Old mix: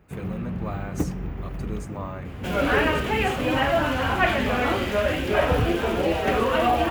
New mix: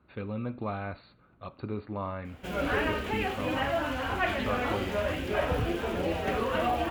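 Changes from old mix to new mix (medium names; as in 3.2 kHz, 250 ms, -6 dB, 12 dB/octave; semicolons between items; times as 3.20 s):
speech: add brick-wall FIR low-pass 4.6 kHz; first sound: muted; second sound -7.5 dB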